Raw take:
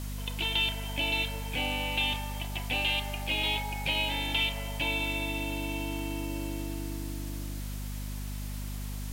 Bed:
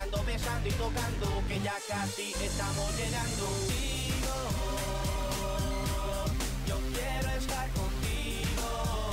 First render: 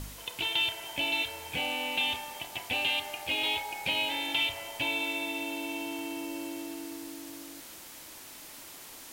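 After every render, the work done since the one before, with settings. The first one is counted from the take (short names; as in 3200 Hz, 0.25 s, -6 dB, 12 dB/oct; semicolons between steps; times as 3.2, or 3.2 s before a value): de-hum 50 Hz, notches 9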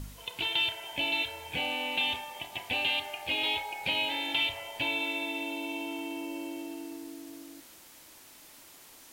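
noise print and reduce 6 dB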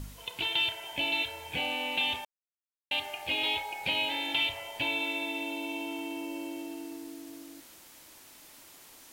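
2.25–2.91 mute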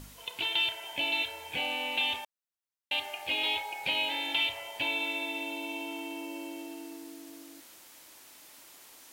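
low shelf 200 Hz -9.5 dB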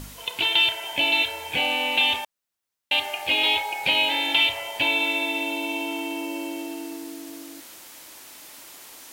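gain +9 dB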